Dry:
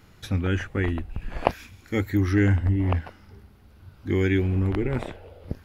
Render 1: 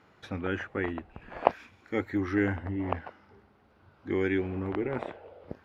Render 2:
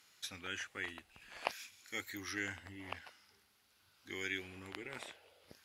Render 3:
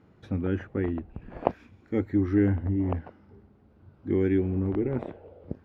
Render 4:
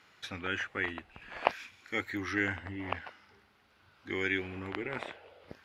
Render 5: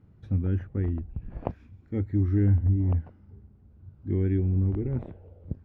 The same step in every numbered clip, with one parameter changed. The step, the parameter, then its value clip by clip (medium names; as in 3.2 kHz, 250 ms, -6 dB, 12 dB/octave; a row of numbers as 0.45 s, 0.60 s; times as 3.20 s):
band-pass filter, frequency: 820 Hz, 7.3 kHz, 320 Hz, 2.2 kHz, 110 Hz